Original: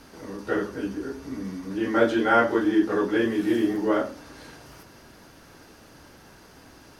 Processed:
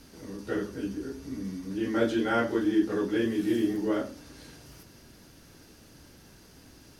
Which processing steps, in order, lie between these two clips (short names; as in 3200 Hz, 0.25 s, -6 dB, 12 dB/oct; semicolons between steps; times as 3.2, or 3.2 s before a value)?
bell 1000 Hz -10 dB 2.5 oct